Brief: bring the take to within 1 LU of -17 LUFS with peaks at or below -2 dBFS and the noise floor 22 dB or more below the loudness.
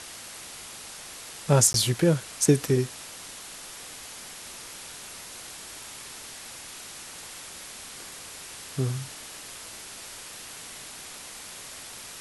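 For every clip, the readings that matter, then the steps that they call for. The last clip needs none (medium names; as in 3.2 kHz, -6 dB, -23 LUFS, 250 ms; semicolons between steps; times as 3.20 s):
dropouts 1; longest dropout 12 ms; noise floor -43 dBFS; noise floor target -53 dBFS; loudness -30.5 LUFS; peak level -7.0 dBFS; loudness target -17.0 LUFS
-> interpolate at 1.73 s, 12 ms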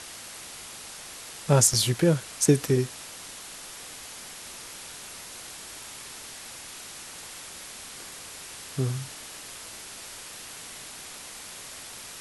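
dropouts 0; noise floor -43 dBFS; noise floor target -53 dBFS
-> noise reduction 10 dB, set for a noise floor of -43 dBFS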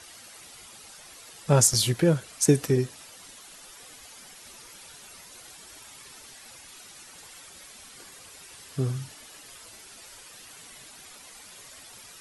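noise floor -48 dBFS; loudness -24.0 LUFS; peak level -7.0 dBFS; loudness target -17.0 LUFS
-> trim +7 dB; peak limiter -2 dBFS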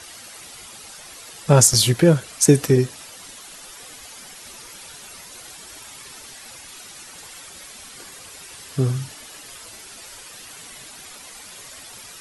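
loudness -17.5 LUFS; peak level -2.0 dBFS; noise floor -41 dBFS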